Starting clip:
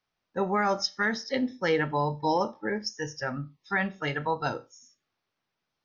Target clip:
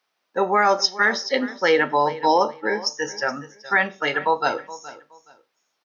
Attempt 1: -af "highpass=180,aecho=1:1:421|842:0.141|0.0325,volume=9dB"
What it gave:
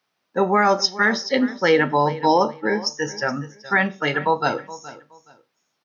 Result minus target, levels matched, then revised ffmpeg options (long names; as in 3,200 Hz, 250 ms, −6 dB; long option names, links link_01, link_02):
250 Hz band +5.0 dB
-af "highpass=370,aecho=1:1:421|842:0.141|0.0325,volume=9dB"